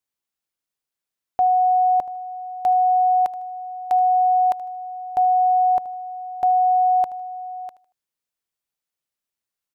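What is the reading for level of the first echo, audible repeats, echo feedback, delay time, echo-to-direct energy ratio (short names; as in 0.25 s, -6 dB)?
-18.0 dB, 2, 32%, 77 ms, -17.5 dB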